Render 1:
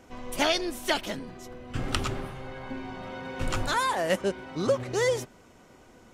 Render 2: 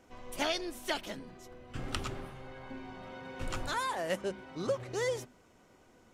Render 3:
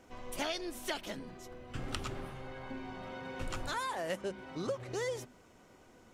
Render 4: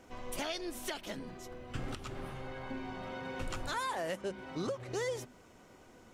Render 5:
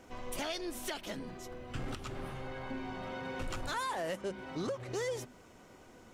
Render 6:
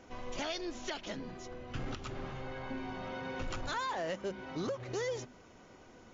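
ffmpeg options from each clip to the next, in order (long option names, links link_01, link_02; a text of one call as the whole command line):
ffmpeg -i in.wav -af "bandreject=frequency=50:width_type=h:width=6,bandreject=frequency=100:width_type=h:width=6,bandreject=frequency=150:width_type=h:width=6,bandreject=frequency=200:width_type=h:width=6,bandreject=frequency=250:width_type=h:width=6,volume=-7.5dB" out.wav
ffmpeg -i in.wav -af "acompressor=threshold=-39dB:ratio=2,volume=2dB" out.wav
ffmpeg -i in.wav -af "alimiter=level_in=4.5dB:limit=-24dB:level=0:latency=1:release=364,volume=-4.5dB,volume=2dB" out.wav
ffmpeg -i in.wav -af "asoftclip=type=tanh:threshold=-30dB,volume=1.5dB" out.wav
ffmpeg -i in.wav -ar 16000 -c:a wmav2 -b:a 128k out.wma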